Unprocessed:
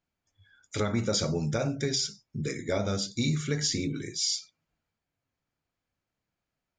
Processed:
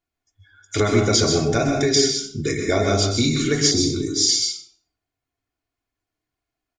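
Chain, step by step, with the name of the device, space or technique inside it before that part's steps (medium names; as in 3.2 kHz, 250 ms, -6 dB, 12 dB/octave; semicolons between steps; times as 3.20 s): microphone above a desk (comb 2.8 ms, depth 61%; reverberation RT60 0.50 s, pre-delay 120 ms, DRR 3 dB); spectral noise reduction 10 dB; 3.71–4.29 s: high-order bell 2.1 kHz -14 dB 1.1 oct; trim +8.5 dB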